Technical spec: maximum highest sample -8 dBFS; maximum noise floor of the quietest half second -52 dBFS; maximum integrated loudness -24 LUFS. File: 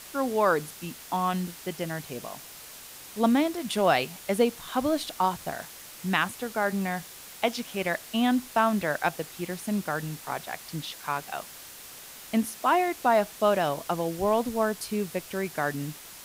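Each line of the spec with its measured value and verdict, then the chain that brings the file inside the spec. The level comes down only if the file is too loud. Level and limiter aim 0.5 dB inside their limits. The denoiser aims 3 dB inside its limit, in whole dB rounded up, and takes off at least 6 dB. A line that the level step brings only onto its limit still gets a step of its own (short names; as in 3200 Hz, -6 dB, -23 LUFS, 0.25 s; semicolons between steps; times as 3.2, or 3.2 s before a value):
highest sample -9.0 dBFS: OK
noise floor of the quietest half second -45 dBFS: fail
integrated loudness -28.0 LUFS: OK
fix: denoiser 10 dB, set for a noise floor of -45 dBFS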